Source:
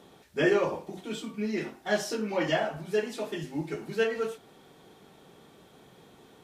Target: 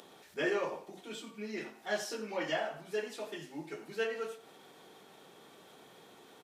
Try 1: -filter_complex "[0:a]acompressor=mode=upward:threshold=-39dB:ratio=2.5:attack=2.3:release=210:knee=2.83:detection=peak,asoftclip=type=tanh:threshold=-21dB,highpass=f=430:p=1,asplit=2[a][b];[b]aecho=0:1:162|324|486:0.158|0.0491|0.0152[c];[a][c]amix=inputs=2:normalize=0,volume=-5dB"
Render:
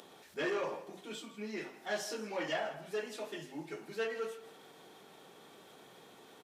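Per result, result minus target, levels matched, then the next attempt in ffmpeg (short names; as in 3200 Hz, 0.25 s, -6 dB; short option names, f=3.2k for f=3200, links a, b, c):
echo 75 ms late; soft clip: distortion +15 dB
-filter_complex "[0:a]acompressor=mode=upward:threshold=-39dB:ratio=2.5:attack=2.3:release=210:knee=2.83:detection=peak,asoftclip=type=tanh:threshold=-21dB,highpass=f=430:p=1,asplit=2[a][b];[b]aecho=0:1:87|174|261:0.158|0.0491|0.0152[c];[a][c]amix=inputs=2:normalize=0,volume=-5dB"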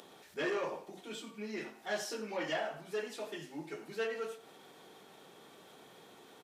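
soft clip: distortion +15 dB
-filter_complex "[0:a]acompressor=mode=upward:threshold=-39dB:ratio=2.5:attack=2.3:release=210:knee=2.83:detection=peak,asoftclip=type=tanh:threshold=-11dB,highpass=f=430:p=1,asplit=2[a][b];[b]aecho=0:1:87|174|261:0.158|0.0491|0.0152[c];[a][c]amix=inputs=2:normalize=0,volume=-5dB"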